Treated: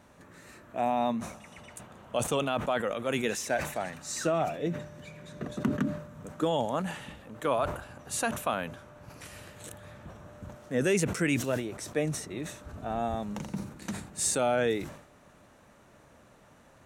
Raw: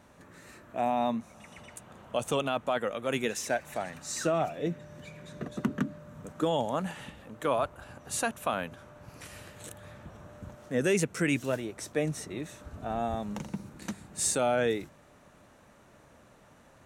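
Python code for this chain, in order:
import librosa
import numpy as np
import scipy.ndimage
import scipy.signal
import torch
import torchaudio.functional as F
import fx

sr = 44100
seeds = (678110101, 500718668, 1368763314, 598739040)

y = fx.sustainer(x, sr, db_per_s=89.0)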